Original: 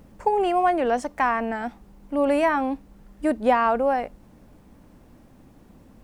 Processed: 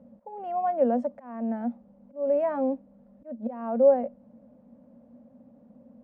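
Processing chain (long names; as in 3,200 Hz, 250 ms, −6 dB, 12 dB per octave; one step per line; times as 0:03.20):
volume swells 374 ms
pair of resonant band-passes 360 Hz, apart 1.2 octaves
level +6 dB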